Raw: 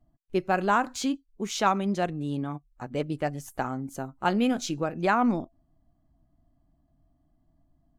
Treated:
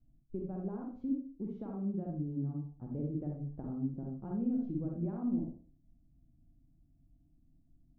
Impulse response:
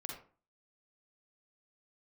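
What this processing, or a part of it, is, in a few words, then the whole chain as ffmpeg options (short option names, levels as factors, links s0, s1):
television next door: -filter_complex "[0:a]acompressor=threshold=0.0316:ratio=3,lowpass=260[s0];[1:a]atrim=start_sample=2205[s1];[s0][s1]afir=irnorm=-1:irlink=0,volume=1.33"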